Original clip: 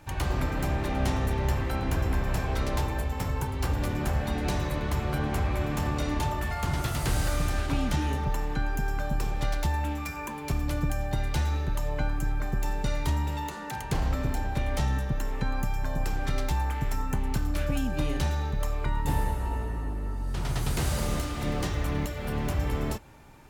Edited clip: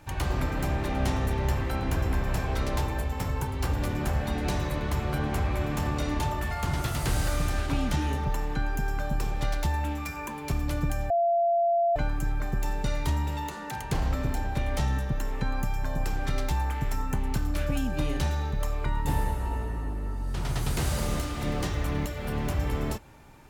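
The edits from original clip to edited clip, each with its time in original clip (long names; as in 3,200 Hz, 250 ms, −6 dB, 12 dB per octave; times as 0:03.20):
0:11.10–0:11.96: beep over 685 Hz −20.5 dBFS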